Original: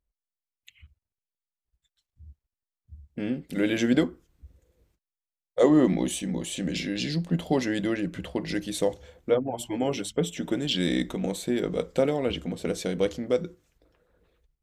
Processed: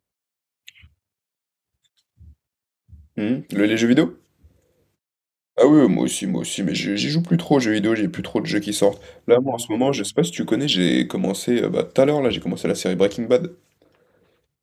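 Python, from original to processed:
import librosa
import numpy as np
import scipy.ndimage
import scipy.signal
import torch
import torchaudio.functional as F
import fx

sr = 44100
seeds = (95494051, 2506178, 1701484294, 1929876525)

p1 = scipy.signal.sosfilt(scipy.signal.butter(4, 93.0, 'highpass', fs=sr, output='sos'), x)
p2 = fx.rider(p1, sr, range_db=10, speed_s=2.0)
p3 = p1 + (p2 * librosa.db_to_amplitude(-1.0))
y = p3 * librosa.db_to_amplitude(1.5)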